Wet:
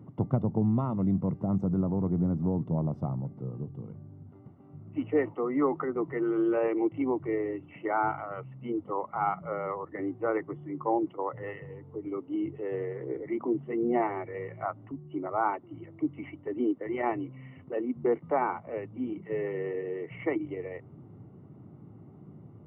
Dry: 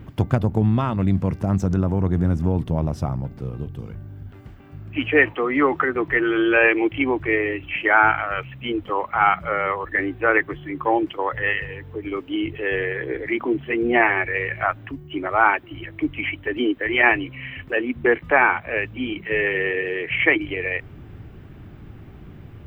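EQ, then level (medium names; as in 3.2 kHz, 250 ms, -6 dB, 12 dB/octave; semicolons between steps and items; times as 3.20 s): Savitzky-Golay filter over 65 samples; high-pass 130 Hz 24 dB/octave; bass shelf 200 Hz +7.5 dB; -8.5 dB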